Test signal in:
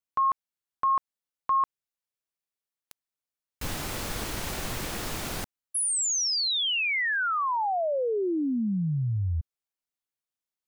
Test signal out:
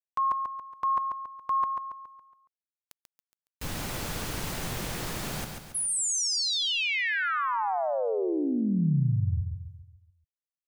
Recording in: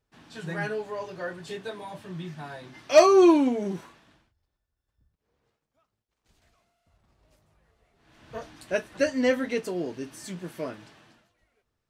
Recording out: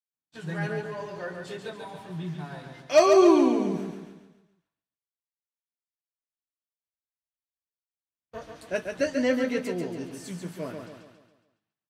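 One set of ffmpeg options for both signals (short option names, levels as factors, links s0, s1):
-filter_complex "[0:a]agate=range=0.00355:threshold=0.00631:ratio=16:release=373:detection=rms,adynamicequalizer=threshold=0.00631:dfrequency=150:dqfactor=1.6:tfrequency=150:tqfactor=1.6:attack=5:release=100:ratio=0.375:range=2.5:mode=boostabove:tftype=bell,asplit=2[s0][s1];[s1]aecho=0:1:139|278|417|556|695|834:0.531|0.244|0.112|0.0517|0.0238|0.0109[s2];[s0][s2]amix=inputs=2:normalize=0,volume=0.75"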